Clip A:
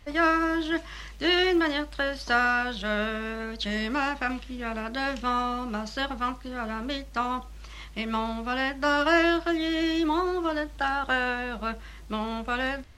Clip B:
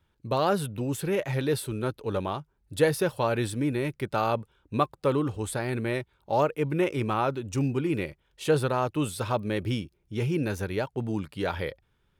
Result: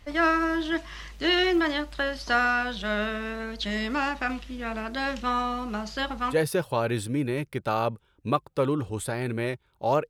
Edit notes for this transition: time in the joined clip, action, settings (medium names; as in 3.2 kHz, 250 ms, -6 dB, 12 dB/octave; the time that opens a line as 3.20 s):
clip A
6.34 s: go over to clip B from 2.81 s, crossfade 0.10 s